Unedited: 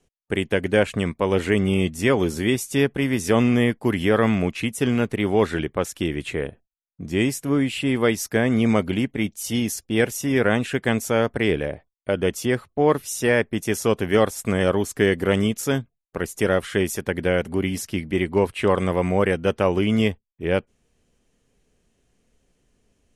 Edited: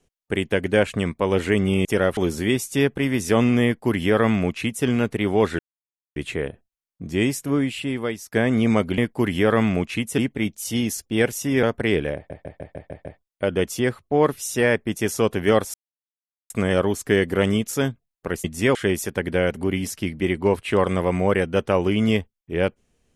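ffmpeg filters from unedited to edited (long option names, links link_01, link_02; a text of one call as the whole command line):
ffmpeg -i in.wav -filter_complex "[0:a]asplit=18[link_01][link_02][link_03][link_04][link_05][link_06][link_07][link_08][link_09][link_10][link_11][link_12][link_13][link_14][link_15][link_16][link_17][link_18];[link_01]atrim=end=1.852[link_19];[link_02]atrim=start=16.338:end=16.662[link_20];[link_03]atrim=start=2.158:end=5.58,asetpts=PTS-STARTPTS,afade=type=out:start_time=3.418:duration=0.004:curve=hsin[link_21];[link_04]atrim=start=5.58:end=6.15,asetpts=PTS-STARTPTS,volume=0[link_22];[link_05]atrim=start=6.15:end=8.31,asetpts=PTS-STARTPTS,afade=type=in:duration=0.004:curve=hsin,afade=type=out:start_time=1.33:duration=0.83:silence=0.223872[link_23];[link_06]atrim=start=8.31:end=8.972,asetpts=PTS-STARTPTS,afade=type=in:duration=0.004:curve=hsin:silence=0.223872[link_24];[link_07]atrim=start=3.638:end=4.842[link_25];[link_08]atrim=start=8.968:end=10.422[link_26];[link_09]atrim=start=11.188:end=11.862[link_27];[link_10]atrim=start=11.708:end=11.862[link_28];[link_11]atrim=start=11.708:end=11.862[link_29];[link_12]atrim=start=11.708:end=11.862[link_30];[link_13]atrim=start=11.708:end=11.862[link_31];[link_14]atrim=start=11.708:end=11.862[link_32];[link_15]atrim=start=11.708:end=14.4,asetpts=PTS-STARTPTS,afade=type=out:start_time=2.688:duration=0.004:curve=hsin,apad=pad_dur=0.76[link_33];[link_16]atrim=start=14.4:end=16.342,asetpts=PTS-STARTPTS,afade=type=in:duration=0.004:curve=hsin[link_34];[link_17]atrim=start=1.848:end=2.162[link_35];[link_18]atrim=start=16.658[link_36];[link_19][link_20]acrossfade=duration=0.004:curve1=hsin:curve2=hsin[link_37];[link_21][link_22][link_23][link_24]concat=n=4:v=0:a=1[link_38];[link_37][link_38]acrossfade=duration=0.004:curve1=hsin:curve2=hsin[link_39];[link_39][link_25]acrossfade=duration=0.004:curve1=hsin:curve2=hsin[link_40];[link_40][link_26]acrossfade=duration=0.004:curve1=hsin:curve2=hsin[link_41];[link_41][link_27]acrossfade=duration=0.004:curve1=hsin:curve2=hsin[link_42];[link_42][link_28]acrossfade=duration=0.004:curve1=hsin:curve2=hsin[link_43];[link_43][link_29]acrossfade=duration=0.004:curve1=hsin:curve2=hsin[link_44];[link_44][link_30]acrossfade=duration=0.004:curve1=hsin:curve2=hsin[link_45];[link_45][link_31]acrossfade=duration=0.004:curve1=hsin:curve2=hsin[link_46];[link_46][link_32]acrossfade=duration=0.004:curve1=hsin:curve2=hsin[link_47];[link_33][link_34]concat=n=2:v=0:a=1[link_48];[link_47][link_48]acrossfade=duration=0.004:curve1=hsin:curve2=hsin[link_49];[link_49][link_35]acrossfade=duration=0.004:curve1=hsin:curve2=hsin[link_50];[link_50][link_36]acrossfade=duration=0.004:curve1=hsin:curve2=hsin" out.wav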